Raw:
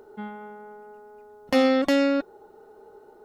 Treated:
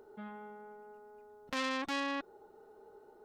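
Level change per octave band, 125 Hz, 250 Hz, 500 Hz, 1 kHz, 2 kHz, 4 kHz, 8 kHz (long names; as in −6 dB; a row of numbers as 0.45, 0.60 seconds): can't be measured, −17.5 dB, −19.5 dB, −8.0 dB, −7.0 dB, −8.0 dB, −6.0 dB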